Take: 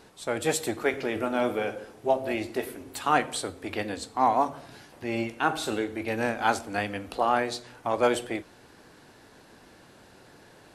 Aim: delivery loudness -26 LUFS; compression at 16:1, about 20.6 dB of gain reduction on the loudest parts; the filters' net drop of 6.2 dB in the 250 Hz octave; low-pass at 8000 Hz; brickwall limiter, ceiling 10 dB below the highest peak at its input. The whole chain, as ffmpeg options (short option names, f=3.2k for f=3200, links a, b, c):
-af "lowpass=8k,equalizer=f=250:t=o:g=-8.5,acompressor=threshold=-39dB:ratio=16,volume=21dB,alimiter=limit=-13dB:level=0:latency=1"